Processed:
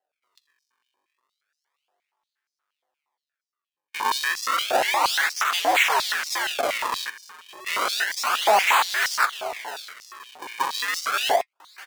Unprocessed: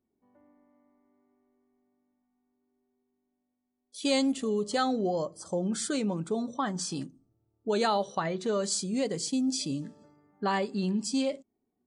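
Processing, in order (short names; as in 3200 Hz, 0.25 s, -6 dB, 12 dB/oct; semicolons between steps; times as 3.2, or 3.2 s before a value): cycle switcher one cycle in 2, inverted; in parallel at -5.5 dB: fuzz box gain 52 dB, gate -53 dBFS; 9.25–10.6 on the sum: compressor 6:1, threshold -30 dBFS, peak gain reduction 13 dB; echo 1.182 s -17 dB; decimation with a swept rate 37×, swing 160% 0.31 Hz; flange 0.18 Hz, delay 6.7 ms, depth 4.4 ms, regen -49%; stepped high-pass 8.5 Hz 710–5300 Hz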